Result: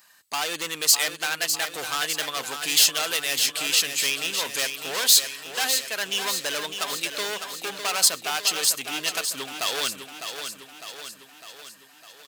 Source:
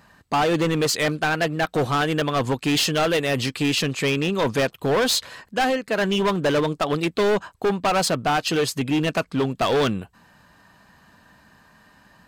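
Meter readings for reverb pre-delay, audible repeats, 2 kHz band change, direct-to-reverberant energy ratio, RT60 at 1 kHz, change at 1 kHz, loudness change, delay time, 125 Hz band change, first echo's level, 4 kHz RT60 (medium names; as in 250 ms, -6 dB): no reverb, 6, -1.5 dB, no reverb, no reverb, -8.0 dB, -1.0 dB, 604 ms, -24.0 dB, -8.0 dB, no reverb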